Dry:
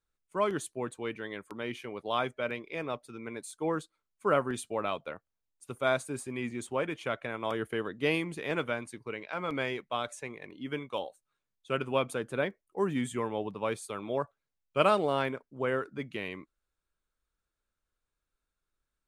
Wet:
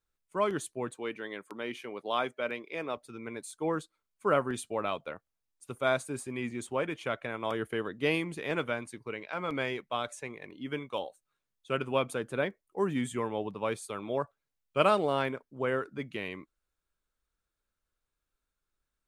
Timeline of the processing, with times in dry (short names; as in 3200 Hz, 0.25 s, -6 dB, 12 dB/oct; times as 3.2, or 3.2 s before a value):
0.96–2.97 HPF 200 Hz